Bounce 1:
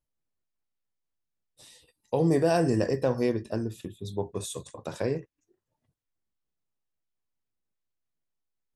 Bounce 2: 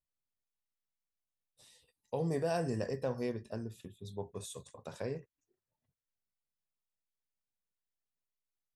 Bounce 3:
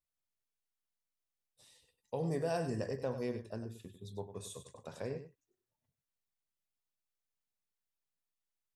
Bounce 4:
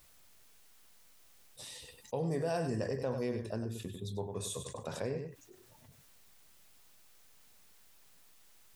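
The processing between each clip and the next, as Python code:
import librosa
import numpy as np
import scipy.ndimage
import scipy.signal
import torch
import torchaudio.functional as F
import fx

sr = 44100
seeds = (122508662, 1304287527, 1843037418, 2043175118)

y1 = fx.peak_eq(x, sr, hz=320.0, db=-9.0, octaves=0.23)
y1 = y1 * 10.0 ** (-9.0 / 20.0)
y2 = y1 + 10.0 ** (-10.5 / 20.0) * np.pad(y1, (int(98 * sr / 1000.0), 0))[:len(y1)]
y2 = y2 * 10.0 ** (-2.0 / 20.0)
y3 = fx.env_flatten(y2, sr, amount_pct=50)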